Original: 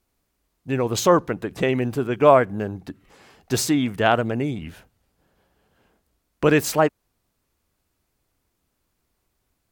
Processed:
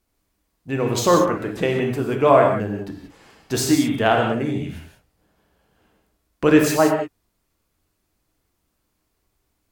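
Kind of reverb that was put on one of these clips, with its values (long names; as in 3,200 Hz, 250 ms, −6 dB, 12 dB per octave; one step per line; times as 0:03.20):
reverb whose tail is shaped and stops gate 210 ms flat, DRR 1.5 dB
level −1 dB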